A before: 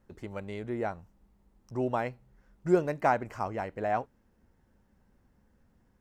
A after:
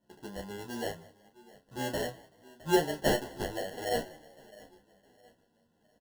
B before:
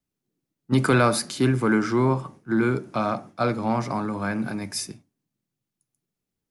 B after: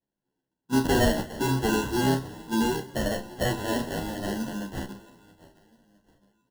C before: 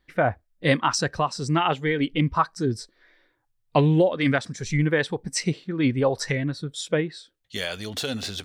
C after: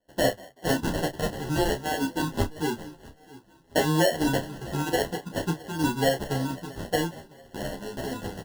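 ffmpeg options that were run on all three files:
ffmpeg -i in.wav -filter_complex "[0:a]highpass=160,asplit=2[link_01][link_02];[link_02]aecho=0:1:662|1324|1986:0.0891|0.0321|0.0116[link_03];[link_01][link_03]amix=inputs=2:normalize=0,acrusher=samples=36:mix=1:aa=0.000001,asuperstop=centerf=2300:order=12:qfactor=4.1,asplit=2[link_04][link_05];[link_05]adelay=30,volume=-8dB[link_06];[link_04][link_06]amix=inputs=2:normalize=0,asplit=2[link_07][link_08];[link_08]asplit=2[link_09][link_10];[link_09]adelay=190,afreqshift=36,volume=-22.5dB[link_11];[link_10]adelay=380,afreqshift=72,volume=-31.6dB[link_12];[link_11][link_12]amix=inputs=2:normalize=0[link_13];[link_07][link_13]amix=inputs=2:normalize=0,asplit=2[link_14][link_15];[link_15]adelay=11.1,afreqshift=-0.66[link_16];[link_14][link_16]amix=inputs=2:normalize=1" out.wav

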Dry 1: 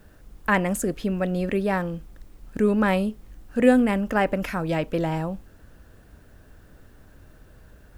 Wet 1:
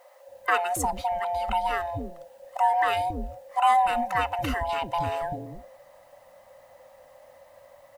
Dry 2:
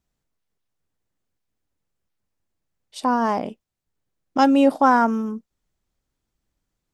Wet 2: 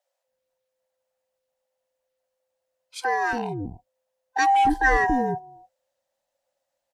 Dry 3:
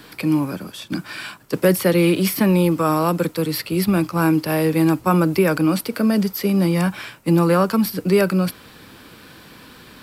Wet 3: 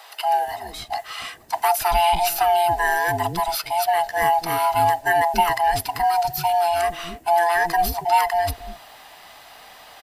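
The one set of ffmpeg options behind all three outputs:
ffmpeg -i in.wav -filter_complex "[0:a]afftfilt=real='real(if(lt(b,1008),b+24*(1-2*mod(floor(b/24),2)),b),0)':imag='imag(if(lt(b,1008),b+24*(1-2*mod(floor(b/24),2)),b),0)':win_size=2048:overlap=0.75,lowshelf=frequency=370:gain=-6.5,acrossover=split=420[link_01][link_02];[link_01]adelay=280[link_03];[link_03][link_02]amix=inputs=2:normalize=0" out.wav

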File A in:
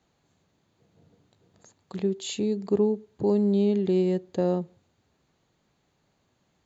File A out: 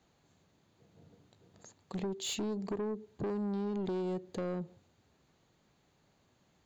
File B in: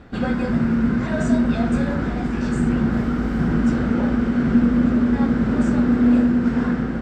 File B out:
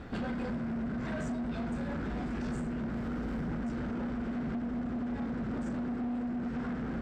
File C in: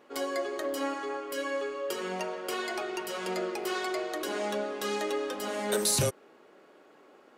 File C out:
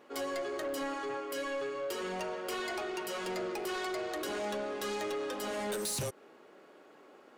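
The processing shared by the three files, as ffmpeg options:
ffmpeg -i in.wav -af "acompressor=threshold=-27dB:ratio=12,asoftclip=type=tanh:threshold=-31dB" out.wav

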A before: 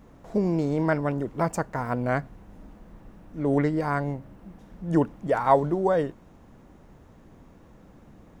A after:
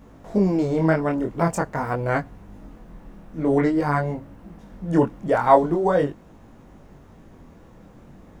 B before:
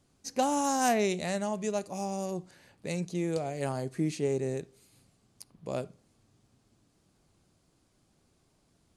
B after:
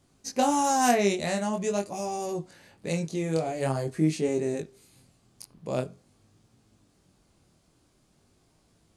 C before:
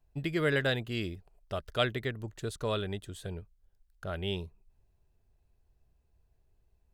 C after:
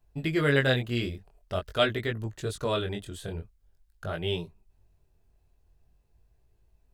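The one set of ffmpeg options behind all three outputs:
ffmpeg -i in.wav -af "flanger=delay=18:depth=7.2:speed=0.46,volume=7dB" out.wav

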